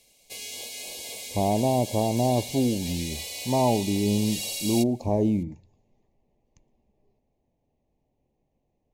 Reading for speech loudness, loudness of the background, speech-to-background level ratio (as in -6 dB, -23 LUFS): -25.5 LUFS, -34.0 LUFS, 8.5 dB